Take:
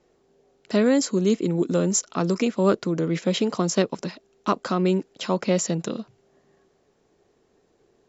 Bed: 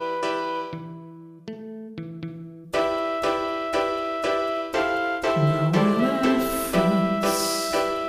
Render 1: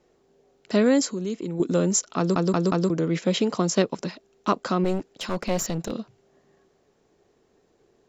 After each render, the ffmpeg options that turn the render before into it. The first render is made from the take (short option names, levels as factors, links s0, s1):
-filter_complex "[0:a]asettb=1/sr,asplit=3[s0][s1][s2];[s0]atrim=end=1.064[s3];[s1]atrim=start=1.06:end=1.6,asetpts=PTS-STARTPTS,afade=t=in:d=0.004:c=qsin,afade=t=out:st=0.536:d=0.004:c=qsin,acompressor=threshold=0.0251:ratio=2:attack=3.2:release=140:knee=1:detection=peak[s4];[s2]atrim=start=1.596[s5];[s3][s4]acrossfade=d=0.004:c1=hsin:c2=qsin[s6];[s6][s5]acrossfade=d=0.004:c1=qsin:c2=hsin,asettb=1/sr,asplit=3[s7][s8][s9];[s7]atrim=end=4.844[s10];[s8]atrim=start=4.84:end=5.92,asetpts=PTS-STARTPTS,afade=t=in:d=0.004:c=qsin,afade=t=out:st=1.076:d=0.004:c=qsin,aeval=exprs='clip(val(0),-1,0.0335)':c=same[s11];[s9]atrim=start=5.916[s12];[s10][s11]acrossfade=d=0.004:c1=hsin:c2=qsin[s13];[s13][s12]acrossfade=d=0.004:c1=qsin:c2=hsin,asplit=5[s14][s15][s16][s17][s18];[s14]atrim=end=2.362[s19];[s15]atrim=start=2.178:end=2.362[s20];[s16]atrim=start=2.178:end=2.362[s21];[s17]atrim=start=2.178:end=2.362[s22];[s18]atrim=start=2.898[s23];[s19][s20]acrossfade=d=0.004:c1=hsin:c2=hsin[s24];[s24][s21]acrossfade=d=0.004:c1=hsin:c2=hsin[s25];[s25][s22]acrossfade=d=0.004:c1=hsin:c2=hsin[s26];[s26][s23]acrossfade=d=0.004:c1=hsin:c2=hsin"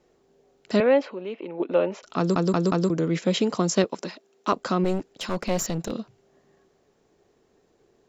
-filter_complex "[0:a]asettb=1/sr,asplit=3[s0][s1][s2];[s0]atrim=end=0.804[s3];[s1]atrim=start=0.8:end=2.03,asetpts=PTS-STARTPTS,afade=t=in:d=0.004:c=qsin,afade=t=out:st=1.226:d=0.004:c=qsin,highpass=390,equalizer=f=580:t=q:w=4:g=8,equalizer=f=860:t=q:w=4:g=7,equalizer=f=2600:t=q:w=4:g=8,lowpass=f=3000:w=0.5412,lowpass=f=3000:w=1.3066[s4];[s2]atrim=start=2.026[s5];[s3][s4]acrossfade=d=0.004:c1=hsin:c2=qsin[s6];[s6][s5]acrossfade=d=0.004:c1=qsin:c2=hsin,asettb=1/sr,asplit=3[s7][s8][s9];[s7]atrim=end=3.844[s10];[s8]atrim=start=3.84:end=4.53,asetpts=PTS-STARTPTS,afade=t=in:d=0.004:c=qsin,afade=t=out:st=0.686:d=0.004:c=qsin,highpass=250[s11];[s9]atrim=start=4.526[s12];[s10][s11]acrossfade=d=0.004:c1=hsin:c2=qsin[s13];[s13][s12]acrossfade=d=0.004:c1=qsin:c2=hsin"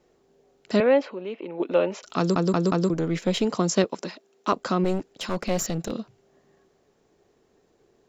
-filter_complex "[0:a]asettb=1/sr,asplit=3[s0][s1][s2];[s0]atrim=end=1.524[s3];[s1]atrim=start=1.52:end=2.3,asetpts=PTS-STARTPTS,afade=t=in:d=0.004:c=qsin,afade=t=out:st=0.776:d=0.004:c=qsin,highshelf=f=3000:g=7[s4];[s2]atrim=start=2.296[s5];[s3][s4]acrossfade=d=0.004:c1=hsin:c2=qsin[s6];[s6][s5]acrossfade=d=0.004:c1=qsin:c2=hsin,asettb=1/sr,asplit=3[s7][s8][s9];[s7]atrim=end=2.934[s10];[s8]atrim=start=2.93:end=3.45,asetpts=PTS-STARTPTS,afade=t=in:d=0.004:c=qsin,afade=t=out:st=0.516:d=0.004:c=qsin,aeval=exprs='if(lt(val(0),0),0.708*val(0),val(0))':c=same[s11];[s9]atrim=start=3.446[s12];[s10][s11]acrossfade=d=0.004:c1=hsin:c2=qsin[s13];[s13][s12]acrossfade=d=0.004:c1=qsin:c2=hsin,asettb=1/sr,asplit=3[s14][s15][s16];[s14]atrim=end=5.444[s17];[s15]atrim=start=5.44:end=5.87,asetpts=PTS-STARTPTS,afade=t=in:d=0.004:c=qsin,afade=t=out:st=0.426:d=0.004:c=qsin,bandreject=f=970:w=7[s18];[s16]atrim=start=5.866[s19];[s17][s18]acrossfade=d=0.004:c1=hsin:c2=qsin[s20];[s20][s19]acrossfade=d=0.004:c1=qsin:c2=hsin"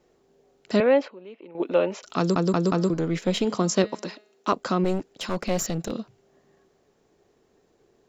-filter_complex "[0:a]asettb=1/sr,asplit=3[s0][s1][s2];[s0]atrim=end=2.644[s3];[s1]atrim=start=2.64:end=4.48,asetpts=PTS-STARTPTS,afade=t=in:d=0.004:c=qsin,afade=t=out:st=1.836:d=0.004:c=qsin,bandreject=f=210.5:t=h:w=4,bandreject=f=421:t=h:w=4,bandreject=f=631.5:t=h:w=4,bandreject=f=842:t=h:w=4,bandreject=f=1052.5:t=h:w=4,bandreject=f=1263:t=h:w=4,bandreject=f=1473.5:t=h:w=4,bandreject=f=1684:t=h:w=4,bandreject=f=1894.5:t=h:w=4,bandreject=f=2105:t=h:w=4,bandreject=f=2315.5:t=h:w=4,bandreject=f=2526:t=h:w=4,bandreject=f=2736.5:t=h:w=4,bandreject=f=2947:t=h:w=4,bandreject=f=3157.5:t=h:w=4,bandreject=f=3368:t=h:w=4,bandreject=f=3578.5:t=h:w=4,bandreject=f=3789:t=h:w=4,bandreject=f=3999.5:t=h:w=4,bandreject=f=4210:t=h:w=4,bandreject=f=4420.5:t=h:w=4,bandreject=f=4631:t=h:w=4,bandreject=f=4841.5:t=h:w=4,bandreject=f=5052:t=h:w=4[s4];[s2]atrim=start=4.476[s5];[s3][s4]acrossfade=d=0.004:c1=hsin:c2=qsin[s6];[s6][s5]acrossfade=d=0.004:c1=qsin:c2=hsin,asplit=3[s7][s8][s9];[s7]atrim=end=1.082[s10];[s8]atrim=start=1.078:end=1.552,asetpts=PTS-STARTPTS,volume=0.335[s11];[s9]atrim=start=1.548[s12];[s10][s11]acrossfade=d=0.004:c1=hsin:c2=hsin[s13];[s13][s12]acrossfade=d=0.004:c1=hsin:c2=hsin"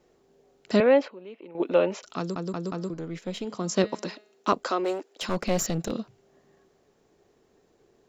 -filter_complex "[0:a]asettb=1/sr,asplit=3[s0][s1][s2];[s0]atrim=end=4.644[s3];[s1]atrim=start=4.64:end=5.22,asetpts=PTS-STARTPTS,afade=t=in:d=0.004:c=qsin,afade=t=out:st=0.576:d=0.004:c=qsin,highpass=f=340:w=0.5412,highpass=f=340:w=1.3066[s4];[s2]atrim=start=5.216[s5];[s3][s4]acrossfade=d=0.004:c1=hsin:c2=qsin[s6];[s6][s5]acrossfade=d=0.004:c1=qsin:c2=hsin,asplit=3[s7][s8][s9];[s7]atrim=end=2.35,asetpts=PTS-STARTPTS,afade=t=out:st=1.98:d=0.37:c=qua:silence=0.334965[s10];[s8]atrim=start=2.35:end=3.49,asetpts=PTS-STARTPTS,volume=0.335[s11];[s9]atrim=start=3.49,asetpts=PTS-STARTPTS,afade=t=in:d=0.37:c=qua:silence=0.334965[s12];[s10][s11][s12]concat=n=3:v=0:a=1"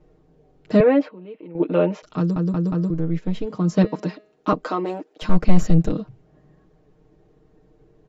-af "aemphasis=mode=reproduction:type=riaa,aecho=1:1:6.5:0.79"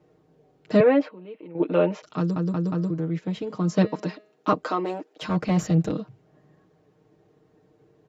-af "highpass=f=71:w=0.5412,highpass=f=71:w=1.3066,lowshelf=f=410:g=-4.5"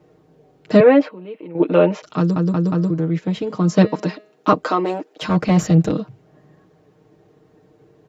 -af "volume=2.24,alimiter=limit=0.794:level=0:latency=1"